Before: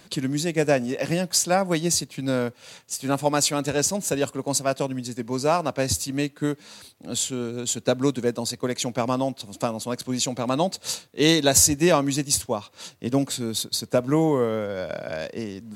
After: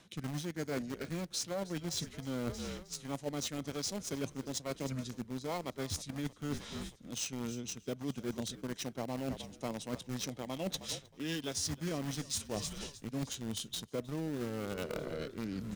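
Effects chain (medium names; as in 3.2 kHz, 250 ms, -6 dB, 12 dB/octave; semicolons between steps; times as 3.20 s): rotary cabinet horn 1.2 Hz; in parallel at -6 dB: bit crusher 4-bit; on the sum: frequency-shifting echo 314 ms, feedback 63%, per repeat -50 Hz, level -21.5 dB; reverse; compression 8:1, threshold -36 dBFS, peak gain reduction 24.5 dB; reverse; formant shift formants -3 st; trim +1 dB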